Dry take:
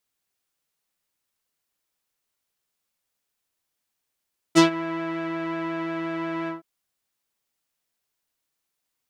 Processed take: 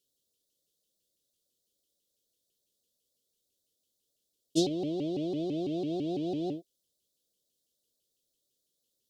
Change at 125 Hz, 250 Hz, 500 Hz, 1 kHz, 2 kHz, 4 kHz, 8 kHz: −3.5 dB, −5.5 dB, −4.0 dB, −15.0 dB, below −25 dB, −7.0 dB, −7.0 dB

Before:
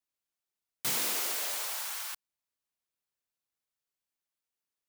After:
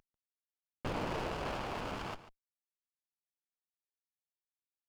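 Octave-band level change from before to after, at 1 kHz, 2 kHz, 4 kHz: +3.5, −4.0, −10.5 decibels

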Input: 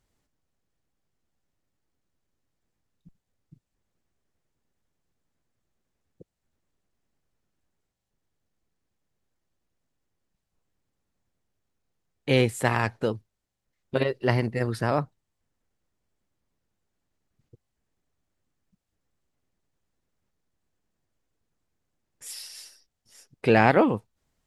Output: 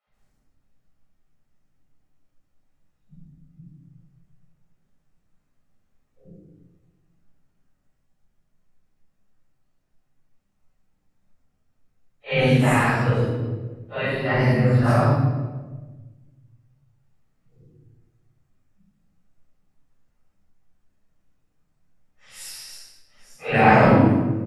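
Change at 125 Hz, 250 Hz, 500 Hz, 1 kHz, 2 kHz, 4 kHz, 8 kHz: +9.5, +7.0, +3.5, +6.5, +5.5, +2.5, +1.5 decibels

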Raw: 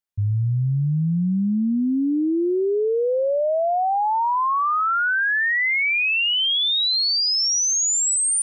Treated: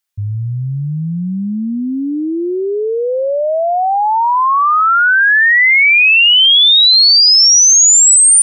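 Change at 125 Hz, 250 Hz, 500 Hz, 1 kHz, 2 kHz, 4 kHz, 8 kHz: +2.0, +2.5, +5.0, +8.5, +11.5, +13.0, +13.5 decibels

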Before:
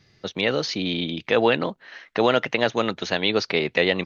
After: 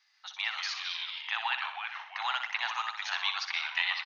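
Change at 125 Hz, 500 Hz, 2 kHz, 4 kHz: below −40 dB, −36.5 dB, −5.5 dB, −6.0 dB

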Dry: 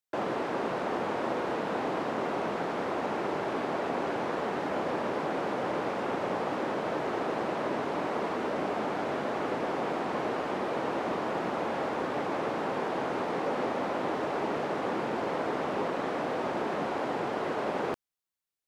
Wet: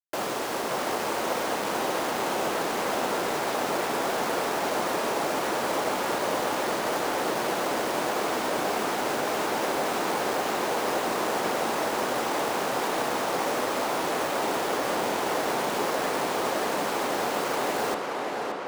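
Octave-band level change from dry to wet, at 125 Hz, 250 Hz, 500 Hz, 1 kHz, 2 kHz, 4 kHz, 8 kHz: −0.5, +1.0, +3.0, +5.0, +6.5, +11.5, +19.5 decibels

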